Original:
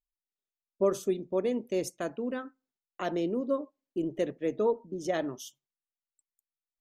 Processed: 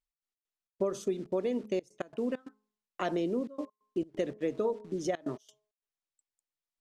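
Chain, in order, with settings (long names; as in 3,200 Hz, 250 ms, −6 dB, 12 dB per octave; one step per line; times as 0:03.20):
in parallel at −9 dB: bit-depth reduction 8 bits, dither none
on the sum: low-pass filter 8,300 Hz 12 dB per octave
hum removal 211.6 Hz, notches 5
gate pattern "x.x.xx.xxxxxxxx" 134 BPM −24 dB
downward compressor 6 to 1, threshold −27 dBFS, peak gain reduction 9.5 dB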